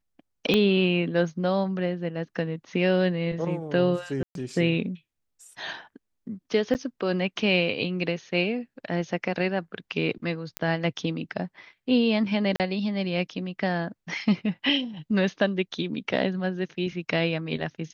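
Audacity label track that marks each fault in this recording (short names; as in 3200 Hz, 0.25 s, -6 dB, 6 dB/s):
0.540000	0.540000	pop -10 dBFS
4.230000	4.350000	gap 0.122 s
6.740000	6.750000	gap 9.4 ms
10.570000	10.570000	pop -10 dBFS
12.560000	12.600000	gap 38 ms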